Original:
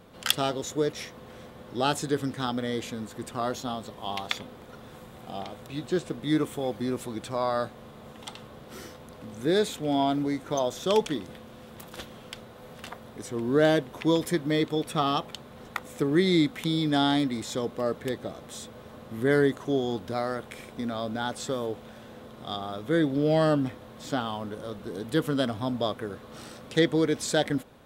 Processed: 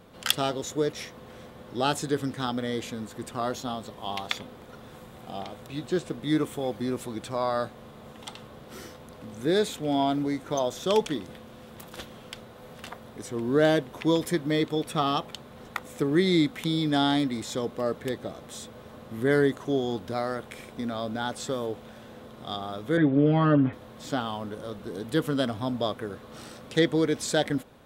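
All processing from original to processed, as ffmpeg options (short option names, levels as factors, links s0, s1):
-filter_complex "[0:a]asettb=1/sr,asplit=3[s0][s1][s2];[s0]atrim=end=22.974[s3];[s1]atrim=start=22.97:end=23.73,asetpts=PTS-STARTPTS,afade=t=in:d=0.004:c=qsin,afade=t=out:st=0.756:d=0.004:c=qsin,lowpass=f=2700:w=0.5412,lowpass=f=2700:w=1.3066,aecho=1:1:7.2:0.89,atrim=end_sample=33516[s4];[s2]atrim=start=23.726[s5];[s3][s4]acrossfade=d=0.004:c1=hsin:c2=qsin[s6];[s6][s5]acrossfade=d=0.004:c1=qsin:c2=hsin"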